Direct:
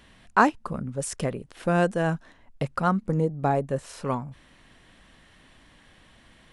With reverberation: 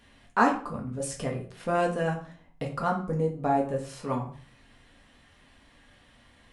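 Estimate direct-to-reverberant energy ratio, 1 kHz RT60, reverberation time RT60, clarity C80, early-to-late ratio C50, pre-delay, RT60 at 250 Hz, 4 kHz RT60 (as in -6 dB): -1.0 dB, 0.40 s, 0.45 s, 13.0 dB, 9.5 dB, 4 ms, 0.55 s, 0.35 s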